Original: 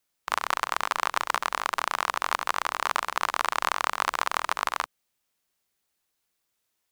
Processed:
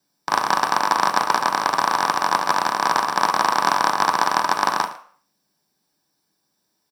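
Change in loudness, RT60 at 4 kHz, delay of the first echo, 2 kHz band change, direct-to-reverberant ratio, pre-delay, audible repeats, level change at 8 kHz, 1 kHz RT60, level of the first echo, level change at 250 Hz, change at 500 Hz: +8.0 dB, 0.40 s, 112 ms, +5.5 dB, 3.5 dB, 3 ms, 1, +6.5 dB, 0.50 s, -18.0 dB, +15.5 dB, +9.5 dB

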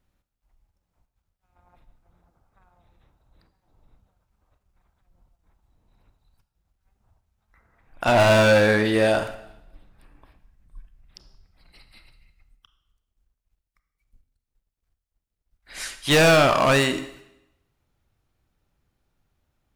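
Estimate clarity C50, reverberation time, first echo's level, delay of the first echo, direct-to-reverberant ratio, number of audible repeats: 12.0 dB, 0.90 s, no echo, no echo, 10.0 dB, no echo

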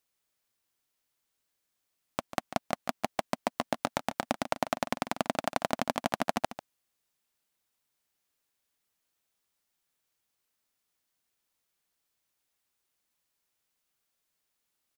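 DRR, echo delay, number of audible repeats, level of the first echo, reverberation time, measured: no reverb, 144 ms, 1, -13.0 dB, no reverb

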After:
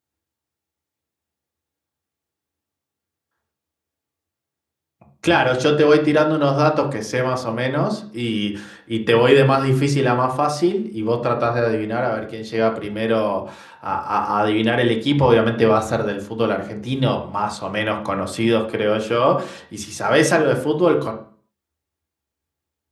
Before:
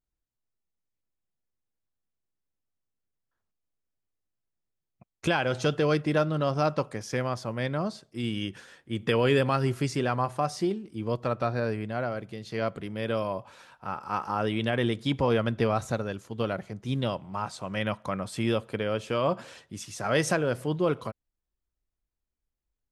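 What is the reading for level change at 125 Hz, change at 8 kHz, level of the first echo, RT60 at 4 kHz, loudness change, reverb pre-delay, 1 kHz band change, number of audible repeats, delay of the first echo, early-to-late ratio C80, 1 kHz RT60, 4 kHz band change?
+7.0 dB, +8.0 dB, no echo, 0.40 s, +10.0 dB, 3 ms, +10.5 dB, no echo, no echo, 15.0 dB, 0.45 s, +9.0 dB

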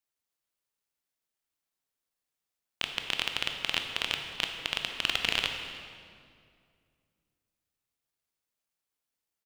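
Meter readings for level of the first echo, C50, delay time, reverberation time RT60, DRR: -20.5 dB, 5.0 dB, 310 ms, 2.2 s, 4.0 dB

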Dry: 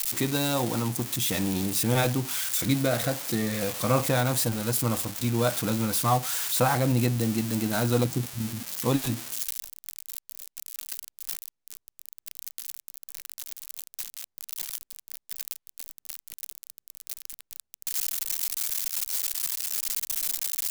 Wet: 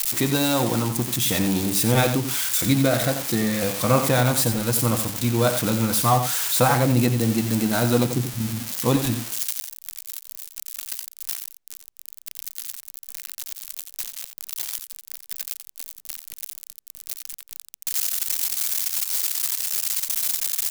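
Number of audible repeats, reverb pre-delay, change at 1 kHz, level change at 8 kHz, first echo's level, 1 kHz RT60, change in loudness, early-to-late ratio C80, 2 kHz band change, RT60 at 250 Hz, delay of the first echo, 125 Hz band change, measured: 1, no reverb, +5.0 dB, +5.0 dB, -9.0 dB, no reverb, +5.0 dB, no reverb, +5.0 dB, no reverb, 88 ms, +4.5 dB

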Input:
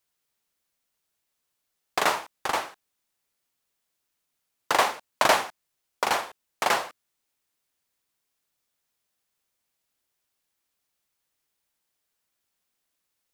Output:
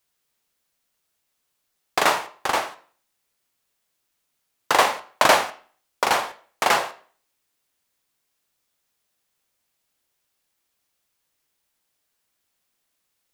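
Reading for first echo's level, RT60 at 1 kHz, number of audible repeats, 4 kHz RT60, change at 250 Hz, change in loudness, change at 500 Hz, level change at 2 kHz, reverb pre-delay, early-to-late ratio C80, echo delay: no echo, 0.45 s, no echo, 0.40 s, +4.5 dB, +4.5 dB, +4.5 dB, +4.5 dB, 16 ms, 19.5 dB, no echo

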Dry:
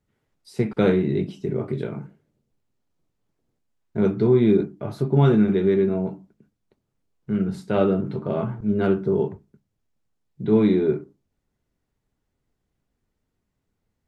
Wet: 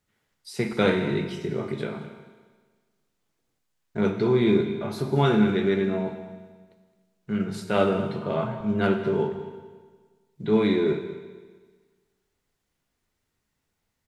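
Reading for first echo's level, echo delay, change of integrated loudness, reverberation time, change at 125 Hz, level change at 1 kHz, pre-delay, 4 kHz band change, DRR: -16.0 dB, 216 ms, -3.0 dB, 1.5 s, -5.0 dB, +2.5 dB, 12 ms, +6.5 dB, 6.0 dB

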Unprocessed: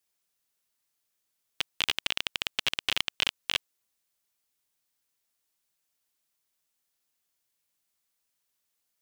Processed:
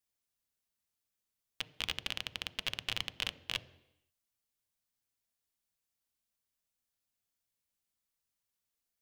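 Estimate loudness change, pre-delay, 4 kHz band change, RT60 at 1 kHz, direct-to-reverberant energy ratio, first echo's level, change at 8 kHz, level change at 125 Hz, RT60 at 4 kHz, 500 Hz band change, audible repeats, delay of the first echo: -8.0 dB, 3 ms, -8.0 dB, 0.85 s, 11.0 dB, no echo, -8.0 dB, -0.5 dB, 0.85 s, -6.5 dB, no echo, no echo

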